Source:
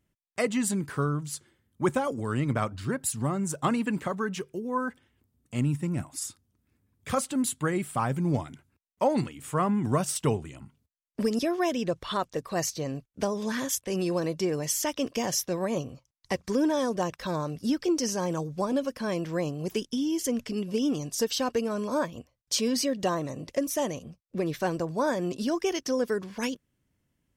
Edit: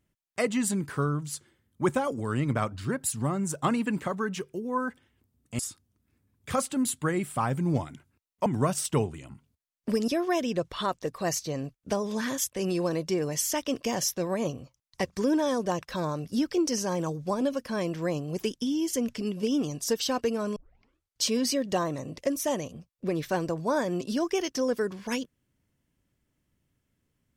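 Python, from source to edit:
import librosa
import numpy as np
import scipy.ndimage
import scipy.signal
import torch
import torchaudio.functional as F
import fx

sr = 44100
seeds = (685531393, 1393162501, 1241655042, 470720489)

y = fx.edit(x, sr, fx.cut(start_s=5.59, length_s=0.59),
    fx.cut(start_s=9.05, length_s=0.72),
    fx.tape_start(start_s=21.87, length_s=0.69), tone=tone)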